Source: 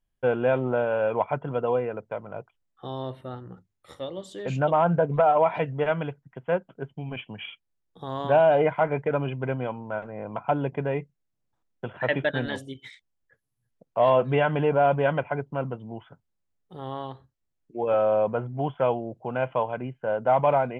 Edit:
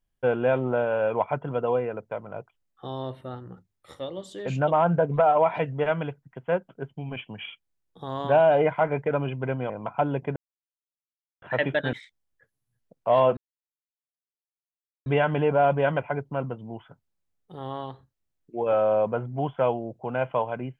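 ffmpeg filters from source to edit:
ffmpeg -i in.wav -filter_complex "[0:a]asplit=6[link_01][link_02][link_03][link_04][link_05][link_06];[link_01]atrim=end=9.702[link_07];[link_02]atrim=start=10.198:end=10.86,asetpts=PTS-STARTPTS,afade=type=out:start_time=0.658:duration=0.004:curve=hsin[link_08];[link_03]atrim=start=10.86:end=11.92,asetpts=PTS-STARTPTS,volume=0[link_09];[link_04]atrim=start=11.92:end=12.432,asetpts=PTS-STARTPTS,afade=type=in:duration=0.004:curve=hsin[link_10];[link_05]atrim=start=12.828:end=14.27,asetpts=PTS-STARTPTS,afade=type=out:start_time=1.438:duration=0.004:curve=hsin,apad=pad_dur=1.69[link_11];[link_06]atrim=start=14.27,asetpts=PTS-STARTPTS,afade=type=in:duration=0.004:curve=hsin[link_12];[link_08][link_09][link_10]concat=n=3:v=0:a=1[link_13];[link_07][link_13]acrossfade=duration=0.004:curve1=hsin:curve2=hsin[link_14];[link_11][link_12]concat=n=2:v=0:a=1[link_15];[link_14][link_15]acrossfade=duration=0.004:curve1=hsin:curve2=hsin" out.wav

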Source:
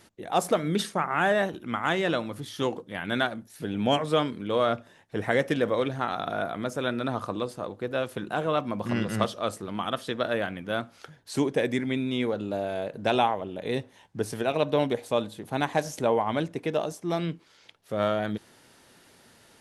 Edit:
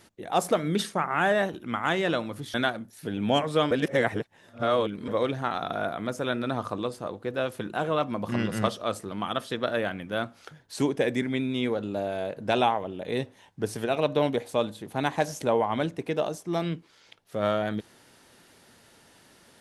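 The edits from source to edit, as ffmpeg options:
ffmpeg -i in.wav -filter_complex "[0:a]asplit=4[link_01][link_02][link_03][link_04];[link_01]atrim=end=2.542[link_05];[link_02]atrim=start=3.108:end=4.282[link_06];[link_03]atrim=start=4.278:end=5.652,asetpts=PTS-STARTPTS,areverse[link_07];[link_04]atrim=start=5.648[link_08];[link_05][link_06]acrossfade=duration=0.004:curve1=hsin:curve2=hsin[link_09];[link_09][link_07]acrossfade=duration=0.004:curve1=hsin:curve2=hsin[link_10];[link_10][link_08]acrossfade=duration=0.004:curve1=hsin:curve2=hsin" out.wav

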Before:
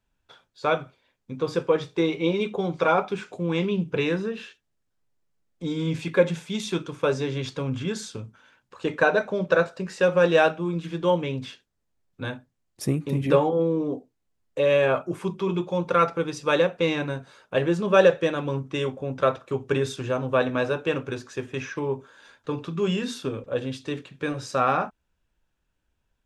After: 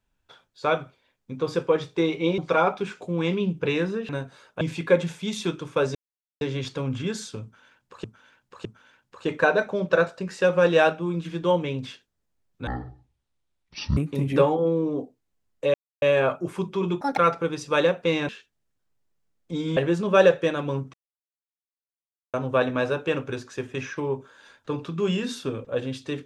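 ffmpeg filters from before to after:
ffmpeg -i in.wav -filter_complex "[0:a]asplit=16[link_01][link_02][link_03][link_04][link_05][link_06][link_07][link_08][link_09][link_10][link_11][link_12][link_13][link_14][link_15][link_16];[link_01]atrim=end=2.382[link_17];[link_02]atrim=start=2.688:end=4.402[link_18];[link_03]atrim=start=17.038:end=17.562[link_19];[link_04]atrim=start=5.878:end=7.22,asetpts=PTS-STARTPTS,afade=type=out:start_time=1.338:duration=0.004:curve=hsin,apad=pad_dur=0.46[link_20];[link_05]atrim=start=7.22:end=8.852,asetpts=PTS-STARTPTS,afade=type=in:duration=0.004:curve=hsin[link_21];[link_06]atrim=start=8.238:end=8.852[link_22];[link_07]atrim=start=8.238:end=12.264[link_23];[link_08]atrim=start=12.26:end=12.91,asetpts=PTS-STARTPTS,asetrate=22050,aresample=44100[link_24];[link_09]atrim=start=12.906:end=14.68,asetpts=PTS-STARTPTS,afade=type=out:start_time=1.77:duration=0.004:curve=hsin,apad=pad_dur=0.28[link_25];[link_10]atrim=start=14.68:end=15.674,asetpts=PTS-STARTPTS,afade=type=in:duration=0.004:curve=hsin[link_26];[link_11]atrim=start=15.67:end=15.93,asetpts=PTS-STARTPTS,asetrate=68796,aresample=44100[link_27];[link_12]atrim=start=15.926:end=17.042[link_28];[link_13]atrim=start=4.398:end=5.882[link_29];[link_14]atrim=start=17.558:end=18.73,asetpts=PTS-STARTPTS,afade=type=out:start_time=1.168:duration=0.004:curve=hsin[link_30];[link_15]atrim=start=18.73:end=20.13,asetpts=PTS-STARTPTS,volume=0[link_31];[link_16]atrim=start=20.13,asetpts=PTS-STARTPTS,afade=type=in:duration=0.004:curve=hsin[link_32];[link_17][link_18]acrossfade=duration=0.004:curve1=hsin:curve2=hsin[link_33];[link_33][link_19]acrossfade=duration=0.004:curve1=hsin:curve2=hsin[link_34];[link_20][link_21]concat=n=2:v=0:a=1[link_35];[link_34][link_35]acrossfade=duration=0.004:curve1=hsin:curve2=hsin[link_36];[link_36][link_22]acrossfade=duration=0.004:curve1=hsin:curve2=hsin[link_37];[link_37][link_23]acrossfade=duration=0.004:curve1=hsin:curve2=hsin[link_38];[link_38][link_24]acrossfade=duration=0.004:curve1=hsin:curve2=hsin[link_39];[link_25][link_26]concat=n=2:v=0:a=1[link_40];[link_39][link_40]acrossfade=duration=0.004:curve1=hsin:curve2=hsin[link_41];[link_41][link_27]acrossfade=duration=0.004:curve1=hsin:curve2=hsin[link_42];[link_42][link_28]acrossfade=duration=0.004:curve1=hsin:curve2=hsin[link_43];[link_43][link_29]acrossfade=duration=0.004:curve1=hsin:curve2=hsin[link_44];[link_30][link_31][link_32]concat=n=3:v=0:a=1[link_45];[link_44][link_45]acrossfade=duration=0.004:curve1=hsin:curve2=hsin" out.wav

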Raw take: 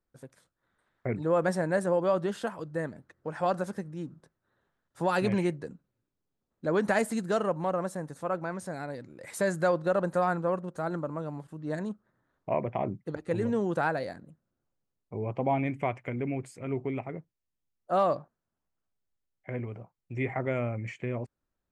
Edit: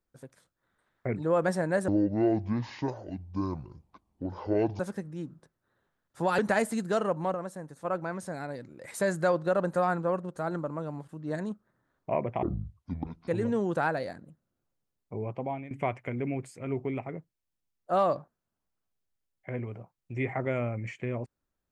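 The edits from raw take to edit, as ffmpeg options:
ffmpeg -i in.wav -filter_complex "[0:a]asplit=9[link_01][link_02][link_03][link_04][link_05][link_06][link_07][link_08][link_09];[link_01]atrim=end=1.884[link_10];[link_02]atrim=start=1.88:end=3.6,asetpts=PTS-STARTPTS,asetrate=26019,aresample=44100[link_11];[link_03]atrim=start=3.596:end=5.192[link_12];[link_04]atrim=start=6.778:end=7.742[link_13];[link_05]atrim=start=7.738:end=8.242,asetpts=PTS-STARTPTS,volume=-5dB[link_14];[link_06]atrim=start=8.238:end=12.824[link_15];[link_07]atrim=start=12.82:end=13.28,asetpts=PTS-STARTPTS,asetrate=23814,aresample=44100[link_16];[link_08]atrim=start=13.276:end=15.71,asetpts=PTS-STARTPTS,afade=type=out:start_time=1.864:duration=0.57:silence=0.141254[link_17];[link_09]atrim=start=15.71,asetpts=PTS-STARTPTS,afade=type=in:duration=0.004:curve=hsin:silence=0.141254[link_18];[link_10][link_11]acrossfade=duration=0.004:curve1=hsin:curve2=hsin[link_19];[link_19][link_12]acrossfade=duration=0.004:curve1=hsin:curve2=hsin[link_20];[link_20][link_13]acrossfade=duration=0.004:curve1=hsin:curve2=hsin[link_21];[link_21][link_14]acrossfade=duration=0.004:curve1=hsin:curve2=hsin[link_22];[link_22][link_15]acrossfade=duration=0.004:curve1=hsin:curve2=hsin[link_23];[link_23][link_16]acrossfade=duration=0.004:curve1=hsin:curve2=hsin[link_24];[link_17][link_18]concat=n=2:v=0:a=1[link_25];[link_24][link_25]acrossfade=duration=0.004:curve1=hsin:curve2=hsin" out.wav

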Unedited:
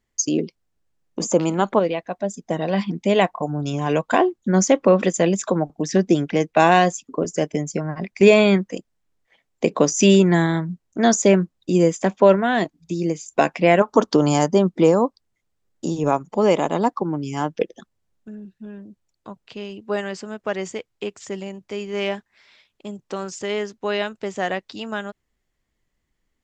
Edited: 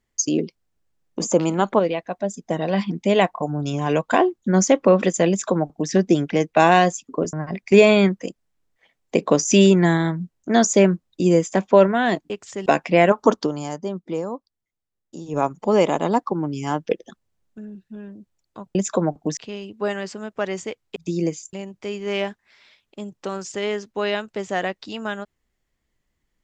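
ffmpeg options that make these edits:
ffmpeg -i in.wav -filter_complex "[0:a]asplit=10[link_01][link_02][link_03][link_04][link_05][link_06][link_07][link_08][link_09][link_10];[link_01]atrim=end=7.332[link_11];[link_02]atrim=start=7.818:end=12.792[link_12];[link_03]atrim=start=21.038:end=21.402[link_13];[link_04]atrim=start=13.358:end=14.23,asetpts=PTS-STARTPTS,afade=type=out:start_time=0.652:duration=0.22:silence=0.266073[link_14];[link_05]atrim=start=14.23:end=15.95,asetpts=PTS-STARTPTS,volume=-11.5dB[link_15];[link_06]atrim=start=15.95:end=19.452,asetpts=PTS-STARTPTS,afade=type=in:duration=0.22:silence=0.266073[link_16];[link_07]atrim=start=5.288:end=5.912[link_17];[link_08]atrim=start=19.448:end=21.042[link_18];[link_09]atrim=start=12.788:end=13.362[link_19];[link_10]atrim=start=21.398[link_20];[link_11][link_12]acrossfade=duration=0.004:curve1=hsin:curve2=hsin[link_21];[link_21][link_13]acrossfade=duration=0.004:curve1=hsin:curve2=hsin[link_22];[link_14][link_15][link_16]concat=n=3:v=0:a=1[link_23];[link_22][link_23]acrossfade=duration=0.004:curve1=hsin:curve2=hsin[link_24];[link_24][link_17]acrossfade=duration=0.004:curve1=hsin:curve2=hsin[link_25];[link_25][link_18]acrossfade=duration=0.004:curve1=hsin:curve2=hsin[link_26];[link_26][link_19]acrossfade=duration=0.004:curve1=hsin:curve2=hsin[link_27];[link_27][link_20]acrossfade=duration=0.004:curve1=hsin:curve2=hsin" out.wav

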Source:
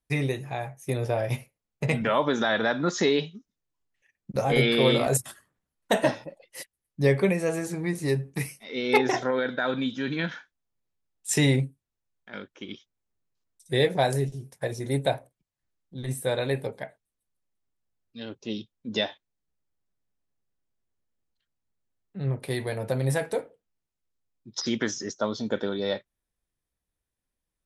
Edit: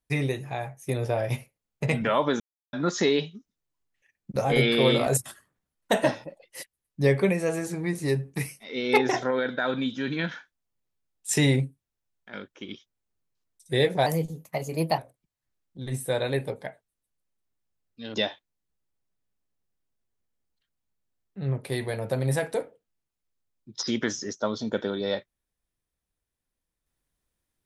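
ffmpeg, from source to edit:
ffmpeg -i in.wav -filter_complex "[0:a]asplit=6[link_01][link_02][link_03][link_04][link_05][link_06];[link_01]atrim=end=2.4,asetpts=PTS-STARTPTS,afade=type=out:start_time=2.396:duration=0.004:curve=hsin[link_07];[link_02]atrim=start=2.4:end=2.73,asetpts=PTS-STARTPTS,volume=0[link_08];[link_03]atrim=start=2.73:end=14.064,asetpts=PTS-STARTPTS,afade=type=in:duration=0.004:curve=hsin[link_09];[link_04]atrim=start=14.06:end=15.15,asetpts=PTS-STARTPTS,asetrate=52038,aresample=44100,atrim=end_sample=40736,asetpts=PTS-STARTPTS[link_10];[link_05]atrim=start=15.146:end=18.312[link_11];[link_06]atrim=start=18.928[link_12];[link_07][link_08][link_09]concat=n=3:v=0:a=1[link_13];[link_13][link_10]acrossfade=duration=0.004:curve1=hsin:curve2=hsin[link_14];[link_14][link_11]acrossfade=duration=0.004:curve1=hsin:curve2=hsin[link_15];[link_15][link_12]acrossfade=duration=0.004:curve1=hsin:curve2=hsin" out.wav

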